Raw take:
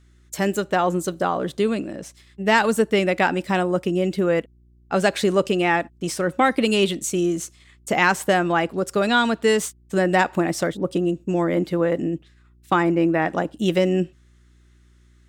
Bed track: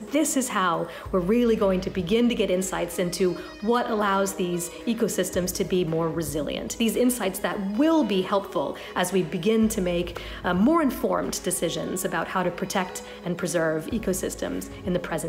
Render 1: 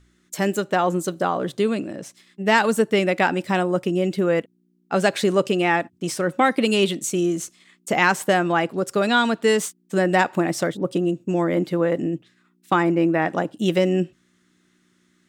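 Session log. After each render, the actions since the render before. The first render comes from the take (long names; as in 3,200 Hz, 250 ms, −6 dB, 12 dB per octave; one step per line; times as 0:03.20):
hum removal 60 Hz, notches 2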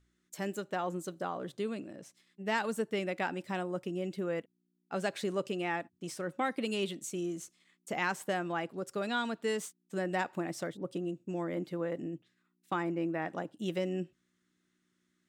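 level −14.5 dB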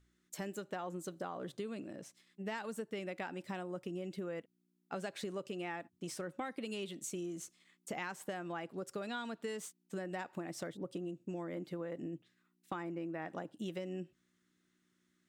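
downward compressor, threshold −38 dBFS, peak gain reduction 11 dB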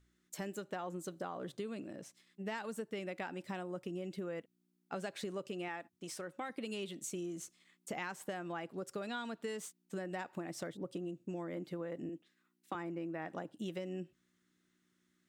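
0:05.68–0:06.50: low-shelf EQ 300 Hz −7.5 dB
0:12.09–0:12.75: high-pass filter 200 Hz 24 dB per octave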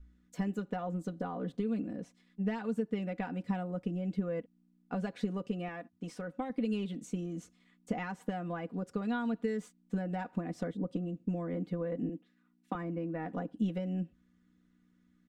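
RIAA equalisation playback
comb filter 4.1 ms, depth 73%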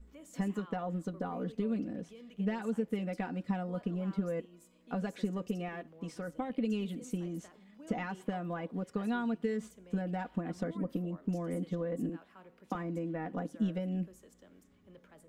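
mix in bed track −31 dB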